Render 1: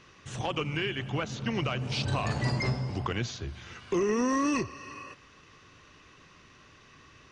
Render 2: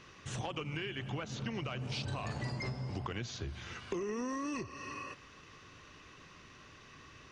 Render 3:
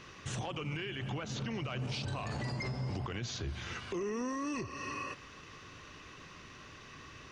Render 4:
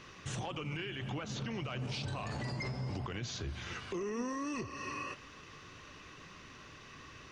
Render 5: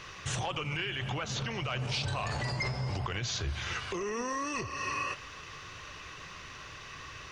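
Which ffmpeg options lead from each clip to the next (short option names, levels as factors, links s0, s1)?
-af "acompressor=threshold=0.0158:ratio=5"
-af "alimiter=level_in=2.99:limit=0.0631:level=0:latency=1:release=26,volume=0.335,volume=1.58"
-af "flanger=delay=3.2:depth=3.8:regen=84:speed=1.7:shape=triangular,volume=1.5"
-af "equalizer=f=250:w=0.98:g=-10.5,volume=2.51"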